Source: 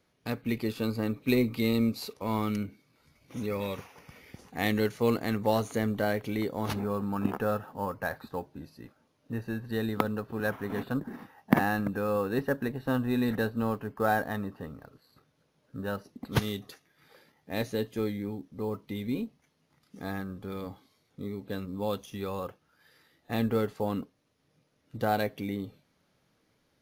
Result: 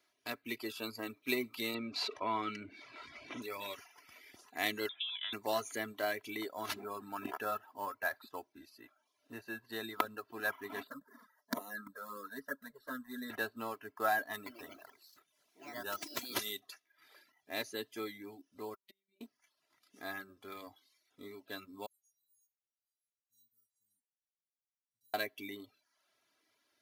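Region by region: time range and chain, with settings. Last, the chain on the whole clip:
1.74–3.42 LPF 3200 Hz + fast leveller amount 50%
4.89–5.33 compressor 12:1, threshold -32 dBFS + inverted band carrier 3700 Hz
10.87–13.3 envelope flanger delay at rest 8.4 ms, full sweep at -21.5 dBFS + fixed phaser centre 520 Hz, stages 8
14.33–16.6 bell 12000 Hz +8 dB 2 oct + echoes that change speed 0.128 s, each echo +3 st, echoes 3, each echo -6 dB + core saturation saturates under 630 Hz
18.74–19.21 flipped gate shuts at -31 dBFS, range -30 dB + robotiser 194 Hz
21.86–25.14 inverse Chebyshev band-stop 390–2600 Hz, stop band 50 dB + resonator 440 Hz, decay 0.34 s, harmonics odd, mix 100%
whole clip: reverb removal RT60 0.6 s; HPF 1100 Hz 6 dB/oct; comb 3 ms, depth 66%; gain -1.5 dB

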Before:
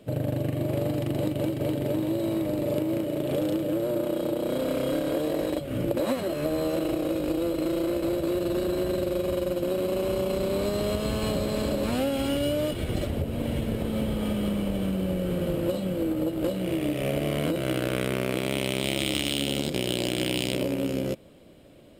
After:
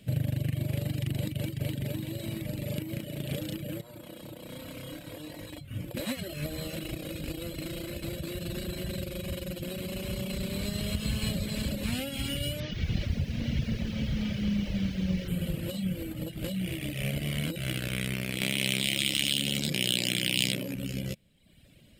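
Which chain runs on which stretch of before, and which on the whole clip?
3.81–5.94 bell 980 Hz +8.5 dB 0.57 oct + resonator 100 Hz, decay 0.16 s, harmonics odd, mix 70%
12.6–15.28 delta modulation 32 kbps, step -35 dBFS + LPF 4000 Hz 6 dB/oct + lo-fi delay 0.112 s, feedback 55%, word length 8-bit, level -10.5 dB
18.41–20.75 HPF 150 Hz + fast leveller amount 100%
whole clip: reverb removal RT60 0.89 s; band shelf 610 Hz -13.5 dB 2.6 oct; gain +2.5 dB

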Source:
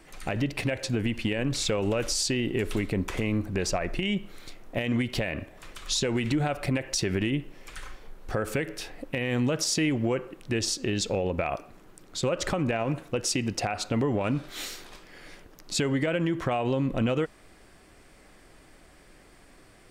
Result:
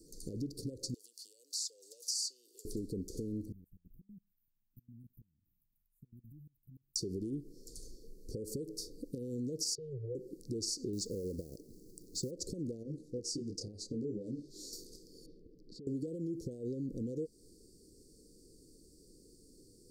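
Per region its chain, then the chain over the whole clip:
0.94–2.65 HPF 1000 Hz 24 dB/oct + three-band squash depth 40%
3.52–6.96 inverse Chebyshev band-stop 740–5500 Hz, stop band 70 dB + pre-emphasis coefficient 0.8 + level quantiser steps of 24 dB
9.75–10.15 elliptic band-stop 140–420 Hz + tape spacing loss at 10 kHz 37 dB + three-band expander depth 40%
10.93–12.31 low shelf 360 Hz +3 dB + companded quantiser 6-bit
12.83–14.73 air absorption 50 m + detuned doubles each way 20 cents
15.26–15.87 air absorption 400 m + compressor 12:1, threshold -42 dBFS
whole clip: compressor 4:1, threshold -32 dBFS; Chebyshev band-stop 480–4500 Hz, order 5; low shelf 150 Hz -7.5 dB; gain -1 dB

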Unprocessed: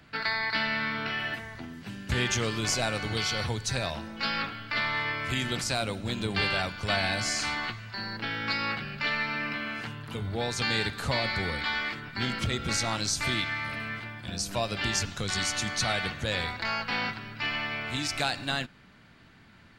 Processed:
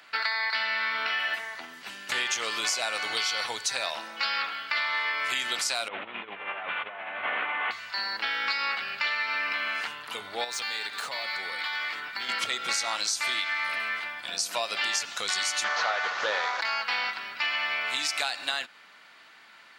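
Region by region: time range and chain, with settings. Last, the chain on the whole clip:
5.88–7.71 delta modulation 16 kbps, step -35 dBFS + negative-ratio compressor -35 dBFS, ratio -0.5
10.44–12.29 median filter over 3 samples + HPF 57 Hz + compressor, threshold -34 dBFS
15.64–16.61 delta modulation 32 kbps, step -31.5 dBFS + band shelf 830 Hz +9.5 dB 2.4 oct + Doppler distortion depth 0.15 ms
whole clip: HPF 790 Hz 12 dB/oct; notch 1600 Hz, Q 23; compressor, threshold -32 dBFS; gain +7 dB

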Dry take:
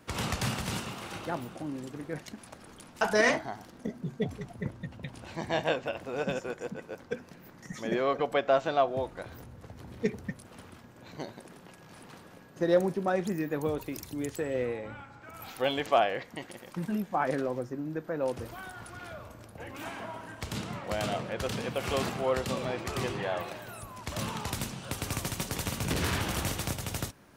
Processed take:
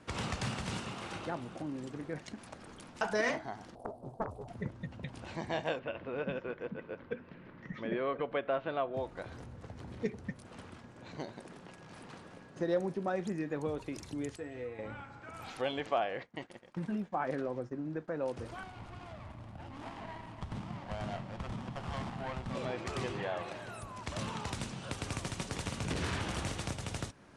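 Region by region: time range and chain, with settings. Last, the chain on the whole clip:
3.75–4.48 EQ curve 120 Hz 0 dB, 170 Hz -18 dB, 730 Hz +11 dB, 1200 Hz -15 dB, 1900 Hz -28 dB, 2700 Hz -20 dB, 4300 Hz -11 dB, 6600 Hz -16 dB, 10000 Hz +4 dB + Doppler distortion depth 0.97 ms
5.79–8.94 LPF 3300 Hz 24 dB/oct + bell 760 Hz -8.5 dB 0.24 oct
14.36–14.79 notch 530 Hz, Q 5.6 + resonator 98 Hz, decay 0.17 s, harmonics odd, mix 80%
15.72–18.08 expander -41 dBFS + high shelf 6100 Hz -7 dB
18.63–22.55 upward compressor, threshold -37 dBFS + fixed phaser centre 1700 Hz, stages 6 + running maximum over 17 samples
whole clip: compressor 1.5:1, threshold -40 dBFS; steep low-pass 10000 Hz 36 dB/oct; high shelf 5700 Hz -5 dB

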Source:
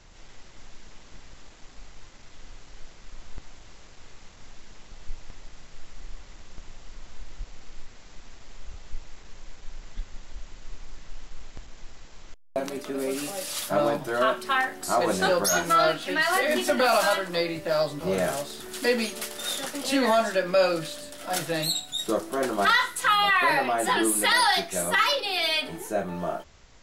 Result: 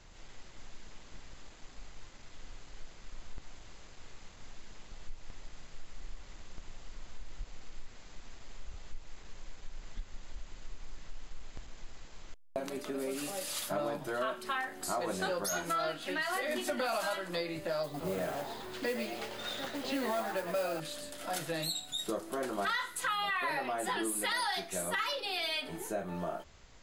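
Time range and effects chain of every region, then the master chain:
17.83–20.8 air absorption 150 m + modulation noise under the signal 16 dB + frequency-shifting echo 0.11 s, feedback 46%, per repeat +110 Hz, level -9.5 dB
whole clip: compressor 2.5:1, threshold -31 dBFS; notch 5600 Hz, Q 18; gain -3.5 dB

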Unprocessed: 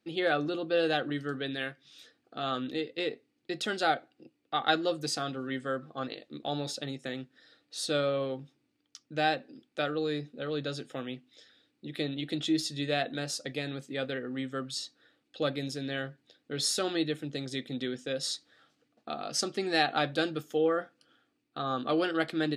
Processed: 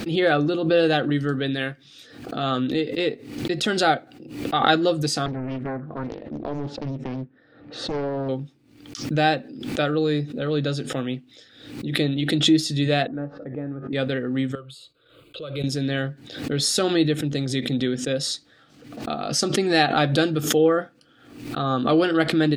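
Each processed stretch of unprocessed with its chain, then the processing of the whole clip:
5.26–8.29 LPF 1400 Hz + compressor 2.5:1, threshold -36 dBFS + Doppler distortion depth 0.76 ms
13.07–13.93 LPF 1400 Hz 24 dB/oct + resonator 95 Hz, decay 0.26 s, mix 70%
14.55–15.64 gate -60 dBFS, range -20 dB + compressor 2:1, threshold -48 dBFS + fixed phaser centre 1200 Hz, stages 8
whole clip: low shelf 230 Hz +10.5 dB; backwards sustainer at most 75 dB/s; gain +6.5 dB

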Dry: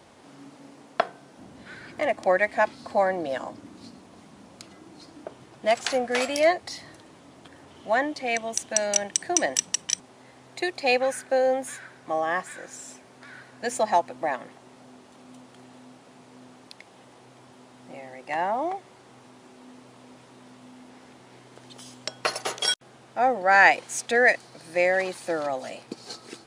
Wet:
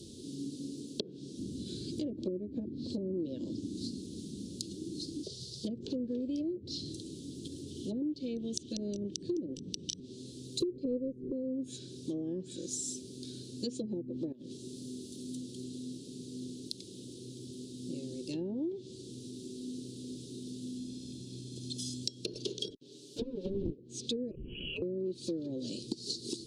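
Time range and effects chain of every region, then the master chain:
5.23–5.65 bell 4600 Hz +14 dB 0.92 oct + fixed phaser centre 700 Hz, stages 4
10.6–11.32 zero-crossing step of -36.5 dBFS + resonant low shelf 650 Hz +8 dB, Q 3 + upward expander, over -20 dBFS
14.32–15.35 high shelf 10000 Hz +7 dB + compressor 10:1, threshold -43 dBFS
20.77–22.03 high shelf 9700 Hz -6 dB + comb 1.2 ms, depth 52%
22.7–23.79 minimum comb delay 7.1 ms + HPF 300 Hz + Doppler distortion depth 0.71 ms
24.31–24.82 inverted band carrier 3100 Hz + fast leveller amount 50%
whole clip: treble ducked by the level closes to 390 Hz, closed at -19.5 dBFS; elliptic band-stop 380–3800 Hz, stop band 40 dB; compressor 4:1, threshold -43 dBFS; gain +9 dB

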